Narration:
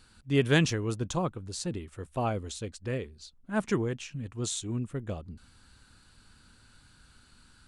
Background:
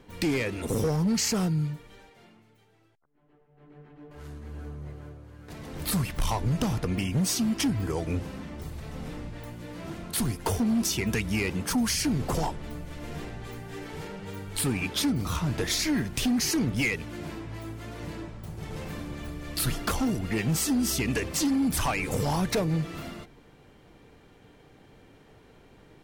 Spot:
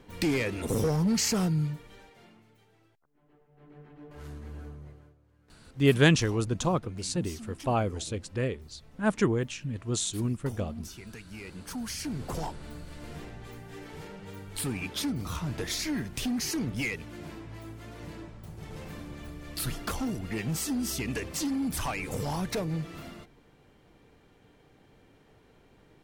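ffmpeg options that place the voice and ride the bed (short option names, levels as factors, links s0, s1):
-filter_complex "[0:a]adelay=5500,volume=1.41[s0];[1:a]volume=3.98,afade=t=out:st=4.4:d=0.75:silence=0.141254,afade=t=in:st=11.28:d=1.34:silence=0.237137[s1];[s0][s1]amix=inputs=2:normalize=0"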